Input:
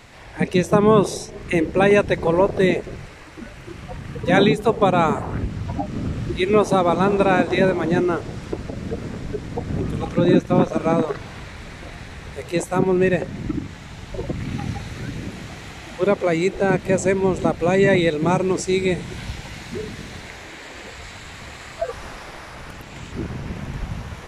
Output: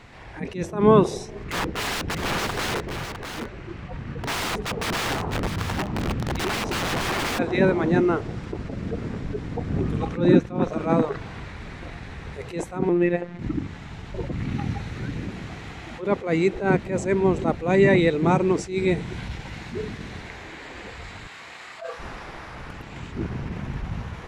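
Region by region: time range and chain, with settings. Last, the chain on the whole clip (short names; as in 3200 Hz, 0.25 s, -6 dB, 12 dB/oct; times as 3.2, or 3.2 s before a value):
1.44–7.39 air absorption 56 m + wrapped overs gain 19 dB + echo 0.655 s -7.5 dB
12.89–13.39 tone controls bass -6 dB, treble -9 dB + robotiser 174 Hz
21.27–21.99 HPF 880 Hz 6 dB/oct + flutter echo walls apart 5.4 m, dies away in 0.27 s
whole clip: LPF 2800 Hz 6 dB/oct; bell 590 Hz -3.5 dB 0.35 oct; attack slew limiter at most 140 dB/s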